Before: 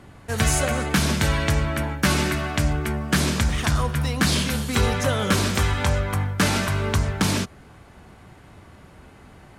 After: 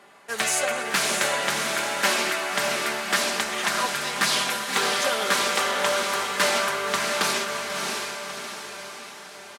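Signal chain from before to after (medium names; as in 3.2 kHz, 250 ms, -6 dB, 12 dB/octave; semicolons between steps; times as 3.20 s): high-pass 550 Hz 12 dB/octave; comb 5 ms, depth 49%; echo that smears into a reverb 624 ms, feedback 52%, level -3 dB; loudspeaker Doppler distortion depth 0.2 ms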